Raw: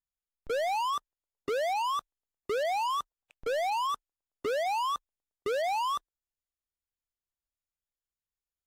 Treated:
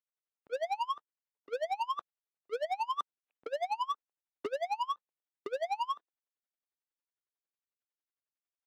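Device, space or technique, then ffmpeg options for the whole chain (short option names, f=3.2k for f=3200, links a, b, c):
helicopter radio: -af "highpass=300,lowpass=2.8k,aeval=exprs='val(0)*pow(10,-28*(0.5-0.5*cos(2*PI*11*n/s))/20)':c=same,asoftclip=type=hard:threshold=-30.5dB,volume=3dB"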